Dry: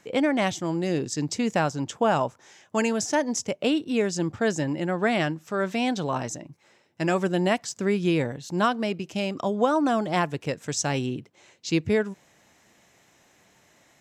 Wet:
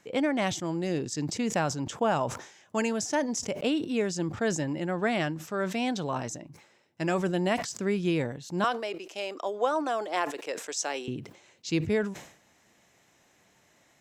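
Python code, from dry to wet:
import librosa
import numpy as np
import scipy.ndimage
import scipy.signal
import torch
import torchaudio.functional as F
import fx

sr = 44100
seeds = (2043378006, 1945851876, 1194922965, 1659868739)

y = fx.highpass(x, sr, hz=360.0, slope=24, at=(8.64, 11.08))
y = fx.sustainer(y, sr, db_per_s=97.0)
y = y * librosa.db_to_amplitude(-4.0)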